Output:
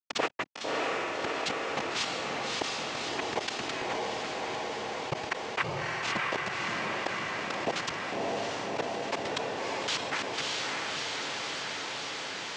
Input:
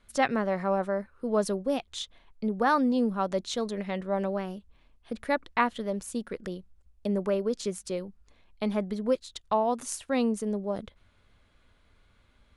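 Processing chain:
harmonic-percussive split with one part muted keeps percussive
high-pass filter 270 Hz 12 dB per octave
high-shelf EQ 4,600 Hz +9.5 dB
steady tone 2,600 Hz −38 dBFS
gate pattern ".xx.x.xx.xxxx." 155 BPM
bit reduction 5 bits
cochlear-implant simulation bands 4
high-frequency loss of the air 170 metres
feedback delay with all-pass diffusion 612 ms, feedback 57%, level −6 dB
envelope flattener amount 70%
level −2.5 dB

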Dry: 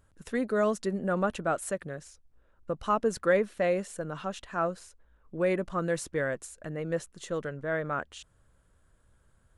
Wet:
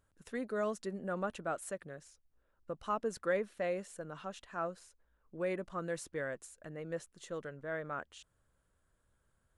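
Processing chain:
low-shelf EQ 190 Hz −4.5 dB
level −8 dB

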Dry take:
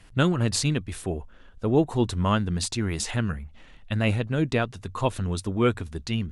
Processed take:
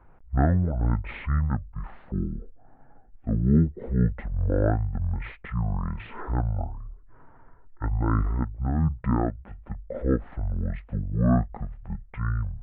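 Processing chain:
Gaussian smoothing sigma 2.5 samples
wrong playback speed 15 ips tape played at 7.5 ips

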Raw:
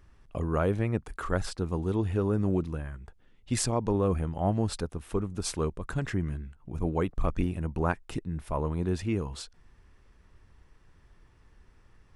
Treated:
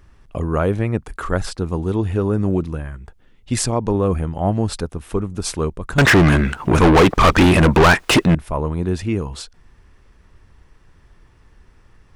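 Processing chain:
0:05.98–0:08.35: mid-hump overdrive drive 38 dB, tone 3,900 Hz, clips at −11.5 dBFS
level +8 dB

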